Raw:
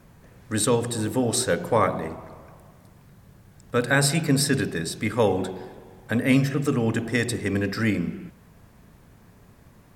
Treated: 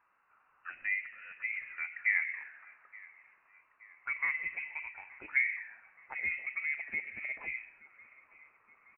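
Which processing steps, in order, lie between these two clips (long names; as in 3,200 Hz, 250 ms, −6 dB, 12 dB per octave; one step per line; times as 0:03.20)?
gliding playback speed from 76% → 146%
envelope filter 770–1,700 Hz, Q 4.5, down, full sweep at −19 dBFS
in parallel at −0.5 dB: downward compressor, threshold −43 dBFS, peak gain reduction 18.5 dB
on the sum: dynamic equaliser 690 Hz, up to +7 dB, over −45 dBFS, Q 1.5
on a send: repeating echo 874 ms, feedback 53%, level −22.5 dB
on the sum: voice inversion scrambler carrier 2,800 Hz
level −7 dB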